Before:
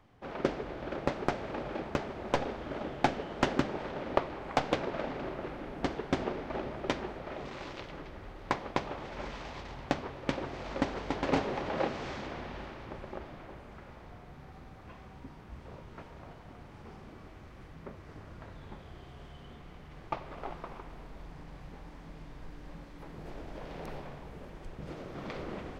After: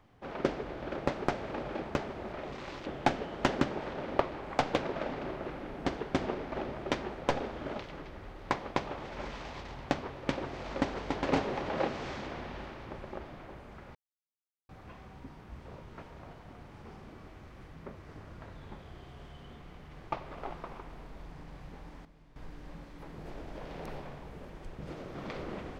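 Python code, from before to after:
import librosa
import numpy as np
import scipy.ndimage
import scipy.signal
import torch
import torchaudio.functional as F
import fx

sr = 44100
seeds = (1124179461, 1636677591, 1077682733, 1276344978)

y = fx.edit(x, sr, fx.swap(start_s=2.33, length_s=0.51, other_s=7.26, other_length_s=0.53),
    fx.silence(start_s=13.95, length_s=0.74),
    fx.clip_gain(start_s=22.05, length_s=0.31, db=-12.0), tone=tone)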